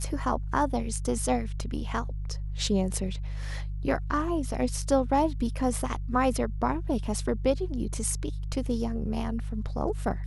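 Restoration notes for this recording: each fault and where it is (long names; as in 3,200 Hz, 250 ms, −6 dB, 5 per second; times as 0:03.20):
mains hum 50 Hz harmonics 3 −33 dBFS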